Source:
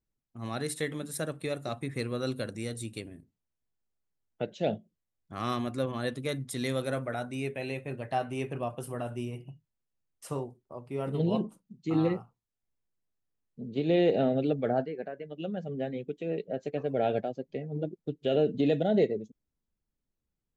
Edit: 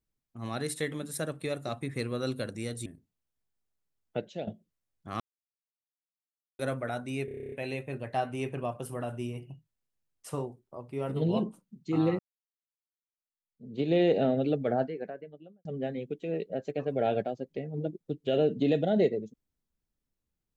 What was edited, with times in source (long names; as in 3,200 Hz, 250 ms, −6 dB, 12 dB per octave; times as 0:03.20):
0:02.86–0:03.11: remove
0:04.45–0:04.72: fade out, to −14 dB
0:05.45–0:06.84: silence
0:07.50: stutter 0.03 s, 10 plays
0:12.17–0:13.74: fade in exponential
0:14.95–0:15.63: fade out and dull